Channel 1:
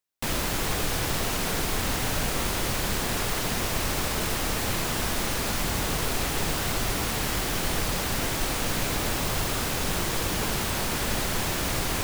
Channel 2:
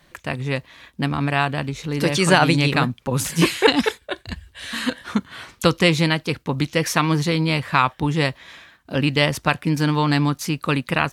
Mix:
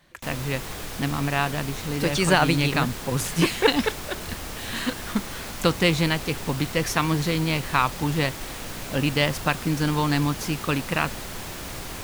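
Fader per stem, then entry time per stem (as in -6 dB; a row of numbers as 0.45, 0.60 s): -7.5, -4.0 dB; 0.00, 0.00 s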